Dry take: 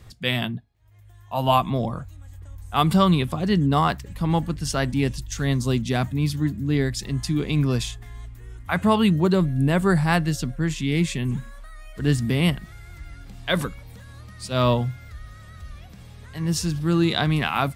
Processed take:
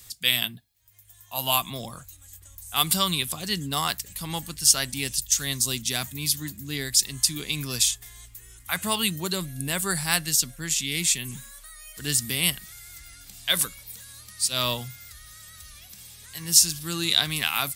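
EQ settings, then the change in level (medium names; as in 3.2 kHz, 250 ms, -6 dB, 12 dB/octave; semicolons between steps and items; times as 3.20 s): pre-emphasis filter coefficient 0.9; treble shelf 2.7 kHz +8.5 dB; +7.0 dB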